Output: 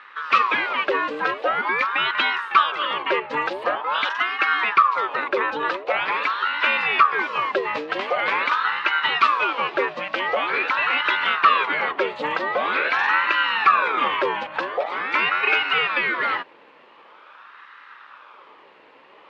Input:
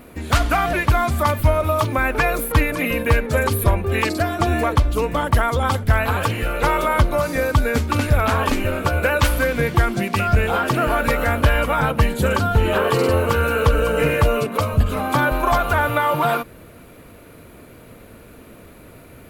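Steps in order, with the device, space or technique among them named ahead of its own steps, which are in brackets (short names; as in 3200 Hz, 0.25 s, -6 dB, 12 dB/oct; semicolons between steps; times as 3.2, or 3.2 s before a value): voice changer toy (ring modulator with a swept carrier 930 Hz, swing 60%, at 0.45 Hz; speaker cabinet 490–4100 Hz, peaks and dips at 700 Hz -10 dB, 1200 Hz +4 dB, 2500 Hz +4 dB)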